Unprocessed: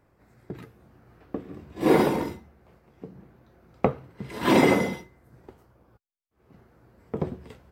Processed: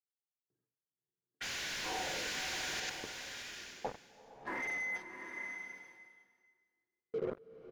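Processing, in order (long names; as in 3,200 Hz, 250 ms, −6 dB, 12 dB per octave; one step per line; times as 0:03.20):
noise gate −49 dBFS, range −14 dB
harmonic and percussive parts rebalanced percussive −15 dB
LFO wah 0.26 Hz 350–2,000 Hz, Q 5.8
sound drawn into the spectrogram noise, 0:01.40–0:02.80, 1,400–7,400 Hz −30 dBFS
low-pass that shuts in the quiet parts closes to 370 Hz, open at −28 dBFS
on a send: repeating echo 97 ms, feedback 17%, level −12 dB
on the sum: leveller curve on the samples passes 5
high-shelf EQ 8,900 Hz −7.5 dB
reversed playback
downward compressor 10 to 1, threshold −33 dBFS, peak gain reduction 13.5 dB
reversed playback
high-shelf EQ 2,200 Hz −10 dB
notch filter 7,600 Hz, Q 23
slow-attack reverb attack 830 ms, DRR 5.5 dB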